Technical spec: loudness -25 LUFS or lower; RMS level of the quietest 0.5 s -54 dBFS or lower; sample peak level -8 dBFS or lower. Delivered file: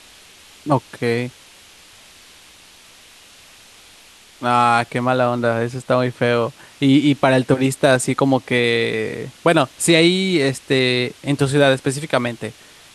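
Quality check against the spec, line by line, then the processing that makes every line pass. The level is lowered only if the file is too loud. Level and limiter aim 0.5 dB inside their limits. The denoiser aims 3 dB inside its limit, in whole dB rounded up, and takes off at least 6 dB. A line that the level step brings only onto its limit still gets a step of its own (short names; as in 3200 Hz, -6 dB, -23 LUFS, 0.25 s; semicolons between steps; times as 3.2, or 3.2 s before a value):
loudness -18.0 LUFS: fail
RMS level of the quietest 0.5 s -47 dBFS: fail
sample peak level -1.5 dBFS: fail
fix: gain -7.5 dB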